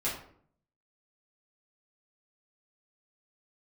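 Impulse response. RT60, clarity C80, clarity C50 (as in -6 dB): 0.60 s, 9.0 dB, 5.0 dB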